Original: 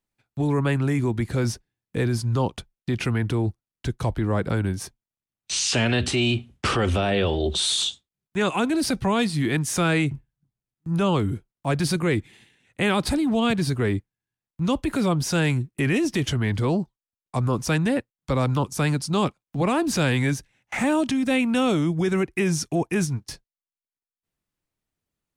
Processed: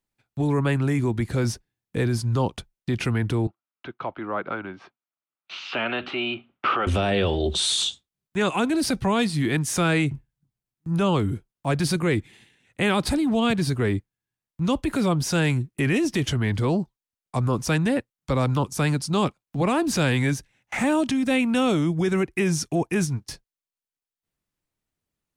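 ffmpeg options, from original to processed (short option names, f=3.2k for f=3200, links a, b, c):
-filter_complex "[0:a]asettb=1/sr,asplit=3[a][b][c];[a]atrim=end=3.474[d];[b]atrim=start=3.47:end=6.87,asetpts=PTS-STARTPTS,afade=t=in:d=0.004:c=qsin,afade=t=out:st=3.396:d=0.004:c=qsin,highpass=380,equalizer=f=460:t=q:w=4:g=-6,equalizer=f=1.3k:t=q:w=4:g=7,equalizer=f=1.8k:t=q:w=4:g=-5,lowpass=f=2.9k:w=0.5412,lowpass=f=2.9k:w=1.3066[e];[c]atrim=start=6.866[f];[d][e]acrossfade=d=0.004:c1=hsin:c2=qsin[g];[g][f]acrossfade=d=0.004:c1=qsin:c2=hsin"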